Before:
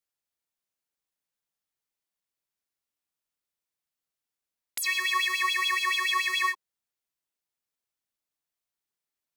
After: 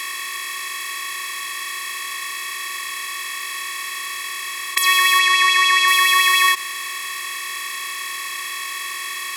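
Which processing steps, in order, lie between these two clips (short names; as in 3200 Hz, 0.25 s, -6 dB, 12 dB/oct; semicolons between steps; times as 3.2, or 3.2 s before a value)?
per-bin compression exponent 0.2; 5.19–5.88 LPF 8500 Hz 12 dB/oct; gain +6.5 dB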